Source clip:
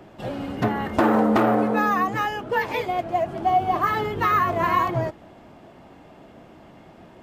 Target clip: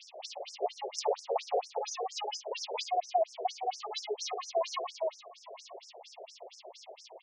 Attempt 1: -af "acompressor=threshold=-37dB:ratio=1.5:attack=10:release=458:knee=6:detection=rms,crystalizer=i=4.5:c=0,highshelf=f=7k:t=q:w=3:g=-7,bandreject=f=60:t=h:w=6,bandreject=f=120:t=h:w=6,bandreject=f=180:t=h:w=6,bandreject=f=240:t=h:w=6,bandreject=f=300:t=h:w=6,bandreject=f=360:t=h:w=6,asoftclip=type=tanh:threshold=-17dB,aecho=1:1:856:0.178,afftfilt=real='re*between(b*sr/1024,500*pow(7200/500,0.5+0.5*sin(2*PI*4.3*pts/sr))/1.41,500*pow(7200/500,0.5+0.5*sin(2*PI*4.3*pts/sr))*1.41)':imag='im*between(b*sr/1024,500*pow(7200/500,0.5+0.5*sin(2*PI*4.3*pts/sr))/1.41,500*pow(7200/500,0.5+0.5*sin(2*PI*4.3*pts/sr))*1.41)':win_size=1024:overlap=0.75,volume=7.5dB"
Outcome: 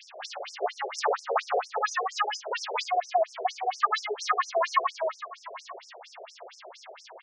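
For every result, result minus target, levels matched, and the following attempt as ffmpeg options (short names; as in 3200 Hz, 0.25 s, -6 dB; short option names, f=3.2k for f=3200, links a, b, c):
2000 Hz band +9.5 dB; compressor: peak gain reduction -2.5 dB
-af "acompressor=threshold=-37dB:ratio=1.5:attack=10:release=458:knee=6:detection=rms,crystalizer=i=4.5:c=0,asuperstop=centerf=1500:order=4:qfactor=0.74,highshelf=f=7k:t=q:w=3:g=-7,bandreject=f=60:t=h:w=6,bandreject=f=120:t=h:w=6,bandreject=f=180:t=h:w=6,bandreject=f=240:t=h:w=6,bandreject=f=300:t=h:w=6,bandreject=f=360:t=h:w=6,asoftclip=type=tanh:threshold=-17dB,aecho=1:1:856:0.178,afftfilt=real='re*between(b*sr/1024,500*pow(7200/500,0.5+0.5*sin(2*PI*4.3*pts/sr))/1.41,500*pow(7200/500,0.5+0.5*sin(2*PI*4.3*pts/sr))*1.41)':imag='im*between(b*sr/1024,500*pow(7200/500,0.5+0.5*sin(2*PI*4.3*pts/sr))/1.41,500*pow(7200/500,0.5+0.5*sin(2*PI*4.3*pts/sr))*1.41)':win_size=1024:overlap=0.75,volume=7.5dB"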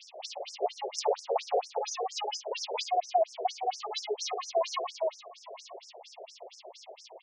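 compressor: peak gain reduction -2.5 dB
-af "acompressor=threshold=-45dB:ratio=1.5:attack=10:release=458:knee=6:detection=rms,crystalizer=i=4.5:c=0,asuperstop=centerf=1500:order=4:qfactor=0.74,highshelf=f=7k:t=q:w=3:g=-7,bandreject=f=60:t=h:w=6,bandreject=f=120:t=h:w=6,bandreject=f=180:t=h:w=6,bandreject=f=240:t=h:w=6,bandreject=f=300:t=h:w=6,bandreject=f=360:t=h:w=6,asoftclip=type=tanh:threshold=-17dB,aecho=1:1:856:0.178,afftfilt=real='re*between(b*sr/1024,500*pow(7200/500,0.5+0.5*sin(2*PI*4.3*pts/sr))/1.41,500*pow(7200/500,0.5+0.5*sin(2*PI*4.3*pts/sr))*1.41)':imag='im*between(b*sr/1024,500*pow(7200/500,0.5+0.5*sin(2*PI*4.3*pts/sr))/1.41,500*pow(7200/500,0.5+0.5*sin(2*PI*4.3*pts/sr))*1.41)':win_size=1024:overlap=0.75,volume=7.5dB"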